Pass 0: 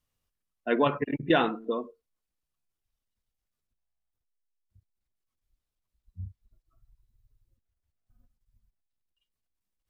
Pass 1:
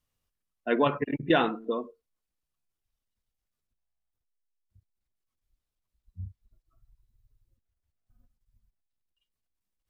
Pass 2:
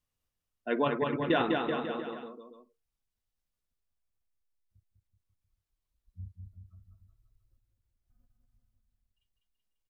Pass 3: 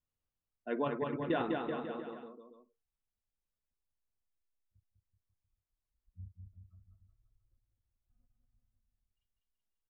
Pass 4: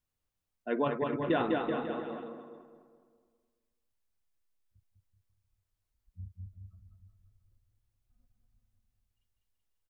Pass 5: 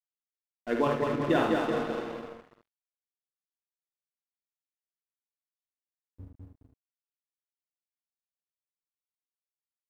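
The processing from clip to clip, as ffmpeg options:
-af anull
-af "aecho=1:1:200|380|542|687.8|819:0.631|0.398|0.251|0.158|0.1,volume=-4.5dB"
-af "highshelf=f=2.1k:g=-8.5,volume=-5dB"
-filter_complex "[0:a]asplit=2[a][b];[b]adelay=210,lowpass=f=2.3k:p=1,volume=-10dB,asplit=2[c][d];[d]adelay=210,lowpass=f=2.3k:p=1,volume=0.51,asplit=2[e][f];[f]adelay=210,lowpass=f=2.3k:p=1,volume=0.51,asplit=2[g][h];[h]adelay=210,lowpass=f=2.3k:p=1,volume=0.51,asplit=2[i][j];[j]adelay=210,lowpass=f=2.3k:p=1,volume=0.51,asplit=2[k][l];[l]adelay=210,lowpass=f=2.3k:p=1,volume=0.51[m];[a][c][e][g][i][k][m]amix=inputs=7:normalize=0,volume=4dB"
-af "aeval=exprs='sgn(val(0))*max(abs(val(0))-0.00596,0)':c=same,aecho=1:1:50|76:0.473|0.473,volume=3.5dB"

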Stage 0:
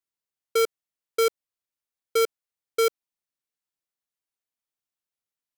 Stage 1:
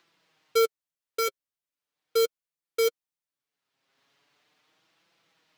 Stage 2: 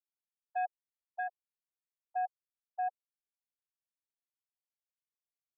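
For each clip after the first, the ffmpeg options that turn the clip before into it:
-filter_complex "[0:a]acrossover=split=110|4900[a][b][c];[b]acompressor=mode=upward:threshold=-42dB:ratio=2.5[d];[a][d][c]amix=inputs=3:normalize=0,acrusher=bits=3:mode=log:mix=0:aa=0.000001,flanger=delay=5.9:depth=1.6:regen=16:speed=0.39:shape=triangular"
-af "afftfilt=real='re*gte(hypot(re,im),0.282)':imag='im*gte(hypot(re,im),0.282)':win_size=1024:overlap=0.75,asoftclip=type=tanh:threshold=-23dB,highpass=f=160:t=q:w=0.5412,highpass=f=160:t=q:w=1.307,lowpass=f=2.4k:t=q:w=0.5176,lowpass=f=2.4k:t=q:w=0.7071,lowpass=f=2.4k:t=q:w=1.932,afreqshift=280,volume=-6dB"

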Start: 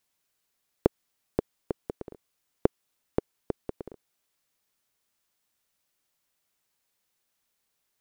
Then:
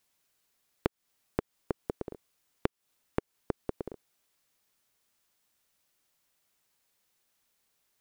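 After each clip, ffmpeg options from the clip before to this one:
-af "acompressor=threshold=-29dB:ratio=6,volume=2.5dB"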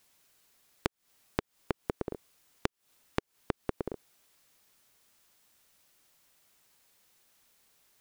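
-af "acompressor=threshold=-36dB:ratio=6,volume=8dB"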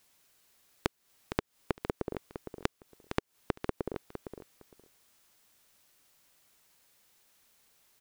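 -af "aecho=1:1:460|920:0.355|0.0568"

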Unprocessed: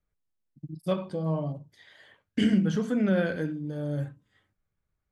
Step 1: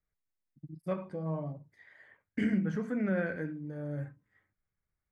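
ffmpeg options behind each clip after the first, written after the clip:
-af "highshelf=f=2.6k:t=q:w=3:g=-7,volume=-6.5dB"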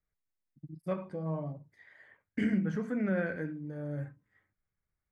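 -af anull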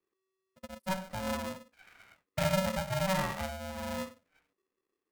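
-af "aeval=exprs='val(0)*sgn(sin(2*PI*380*n/s))':c=same"

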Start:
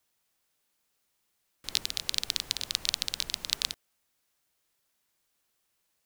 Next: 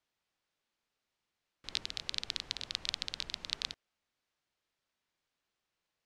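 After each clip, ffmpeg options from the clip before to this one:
-af "lowpass=4.6k,volume=-4.5dB"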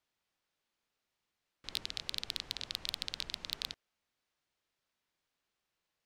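-af "asoftclip=type=hard:threshold=-17dB"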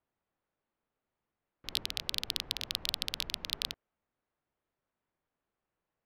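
-af "adynamicsmooth=sensitivity=4:basefreq=1.5k,volume=4.5dB"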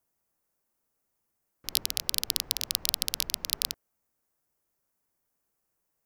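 -af "aexciter=amount=4.1:drive=5.8:freq=5k,volume=1dB"

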